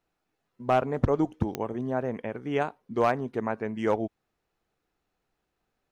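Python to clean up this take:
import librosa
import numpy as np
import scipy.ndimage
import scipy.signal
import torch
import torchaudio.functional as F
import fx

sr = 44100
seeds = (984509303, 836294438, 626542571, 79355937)

y = fx.fix_declip(x, sr, threshold_db=-14.5)
y = fx.fix_declick_ar(y, sr, threshold=10.0)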